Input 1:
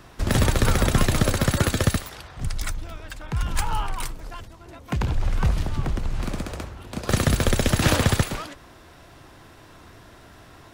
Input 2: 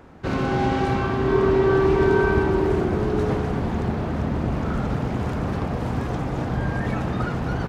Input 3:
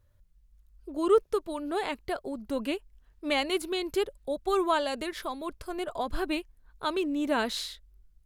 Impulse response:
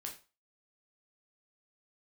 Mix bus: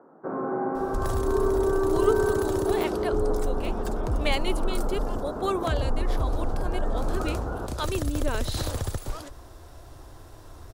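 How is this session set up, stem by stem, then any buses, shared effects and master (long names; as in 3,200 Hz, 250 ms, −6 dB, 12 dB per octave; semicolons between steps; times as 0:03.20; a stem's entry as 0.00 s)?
+2.5 dB, 0.75 s, bus A, no send, low-shelf EQ 71 Hz +9.5 dB; downward compressor 6 to 1, threshold −24 dBFS, peak gain reduction 15 dB
−2.0 dB, 0.00 s, bus A, send −7 dB, elliptic band-pass filter 180–1,400 Hz, stop band 40 dB
+1.5 dB, 0.95 s, no bus, no send, tape wow and flutter 23 cents; rotating-speaker cabinet horn 0.85 Hz
bus A: 0.0 dB, parametric band 2,300 Hz −12.5 dB 1.7 octaves; brickwall limiter −16.5 dBFS, peak gain reduction 7.5 dB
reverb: on, RT60 0.35 s, pre-delay 6 ms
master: parametric band 190 Hz −12 dB 0.93 octaves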